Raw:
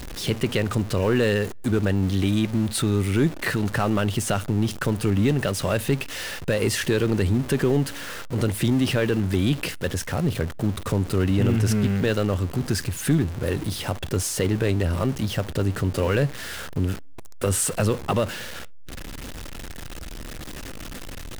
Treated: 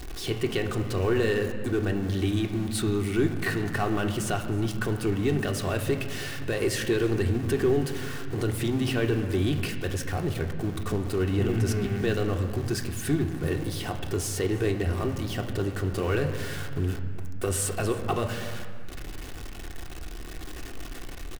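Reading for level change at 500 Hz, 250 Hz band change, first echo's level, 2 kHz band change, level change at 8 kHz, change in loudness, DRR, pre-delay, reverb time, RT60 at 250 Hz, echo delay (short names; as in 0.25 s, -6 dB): -2.5 dB, -4.5 dB, -21.0 dB, -3.5 dB, -5.5 dB, -4.0 dB, 2.5 dB, 3 ms, 2.0 s, 3.0 s, 0.316 s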